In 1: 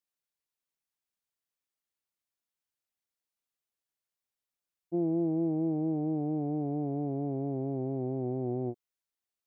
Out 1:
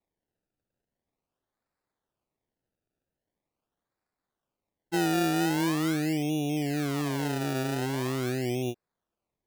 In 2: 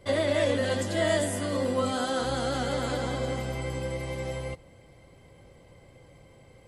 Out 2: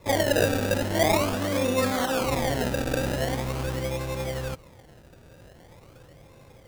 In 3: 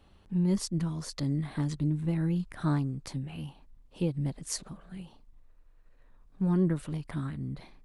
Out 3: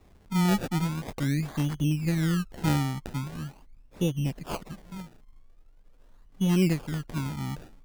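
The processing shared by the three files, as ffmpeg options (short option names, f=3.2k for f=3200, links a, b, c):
-af "acrusher=samples=28:mix=1:aa=0.000001:lfo=1:lforange=28:lforate=0.43,volume=3dB"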